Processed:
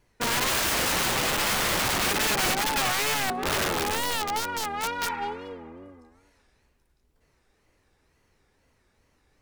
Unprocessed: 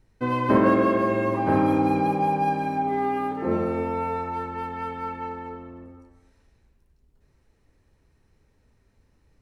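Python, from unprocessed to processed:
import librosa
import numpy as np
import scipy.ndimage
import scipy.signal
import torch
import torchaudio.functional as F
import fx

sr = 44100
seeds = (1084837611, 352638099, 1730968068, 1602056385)

y = fx.tracing_dist(x, sr, depth_ms=0.36)
y = fx.wow_flutter(y, sr, seeds[0], rate_hz=2.1, depth_cents=150.0)
y = fx.low_shelf(y, sr, hz=340.0, db=-12.0)
y = (np.mod(10.0 ** (25.0 / 20.0) * y + 1.0, 2.0) - 1.0) / 10.0 ** (25.0 / 20.0)
y = fx.spec_repair(y, sr, seeds[1], start_s=5.08, length_s=0.92, low_hz=860.0, high_hz=2700.0, source='both')
y = y * 10.0 ** (4.5 / 20.0)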